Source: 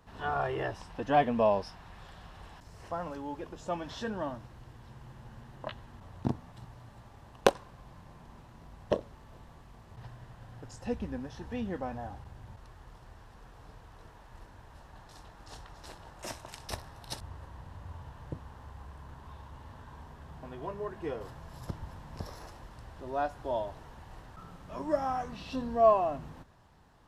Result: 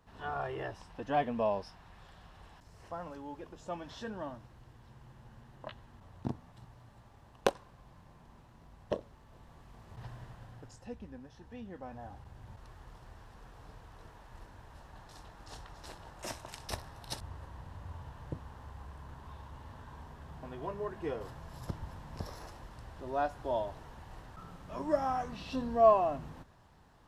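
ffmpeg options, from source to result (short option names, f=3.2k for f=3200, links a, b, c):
-af "volume=11.5dB,afade=t=in:st=9.29:d=0.89:silence=0.446684,afade=t=out:st=10.18:d=0.71:silence=0.251189,afade=t=in:st=11.74:d=0.96:silence=0.316228"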